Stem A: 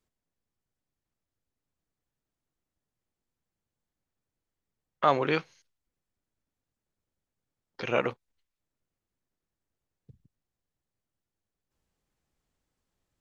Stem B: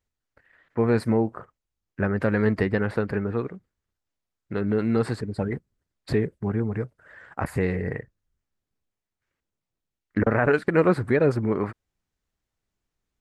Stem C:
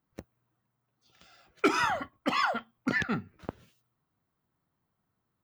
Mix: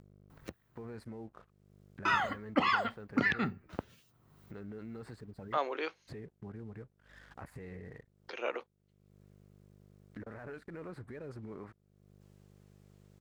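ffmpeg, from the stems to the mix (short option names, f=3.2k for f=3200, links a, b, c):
-filter_complex "[0:a]highpass=f=320:w=0.5412,highpass=f=320:w=1.3066,adelay=500,volume=-9dB[a];[1:a]alimiter=limit=-18.5dB:level=0:latency=1:release=10,aeval=exprs='val(0)+0.00355*(sin(2*PI*50*n/s)+sin(2*PI*2*50*n/s)/2+sin(2*PI*3*50*n/s)/3+sin(2*PI*4*50*n/s)/4+sin(2*PI*5*50*n/s)/5)':c=same,aeval=exprs='sgn(val(0))*max(abs(val(0))-0.00299,0)':c=same,volume=-19dB[b];[2:a]acrossover=split=4200[c][d];[d]acompressor=threshold=-59dB:ratio=4:attack=1:release=60[e];[c][e]amix=inputs=2:normalize=0,acrossover=split=1700[f][g];[f]aeval=exprs='val(0)*(1-0.5/2+0.5/2*cos(2*PI*1.8*n/s))':c=same[h];[g]aeval=exprs='val(0)*(1-0.5/2-0.5/2*cos(2*PI*1.8*n/s))':c=same[i];[h][i]amix=inputs=2:normalize=0,adelay=300,volume=2dB,asplit=3[j][k][l];[j]atrim=end=0.97,asetpts=PTS-STARTPTS,afade=t=out:st=0.966:d=0.004:c=hsin[m];[k]atrim=start=0.97:end=2.05,asetpts=PTS-STARTPTS,volume=0[n];[l]atrim=start=2.05,asetpts=PTS-STARTPTS,afade=t=in:d=0.004:c=hsin[o];[m][n][o]concat=n=3:v=0:a=1[p];[a][b][p]amix=inputs=3:normalize=0,acompressor=mode=upward:threshold=-42dB:ratio=2.5"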